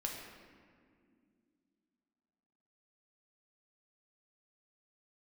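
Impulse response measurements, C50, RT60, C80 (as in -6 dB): 2.5 dB, 2.2 s, 4.0 dB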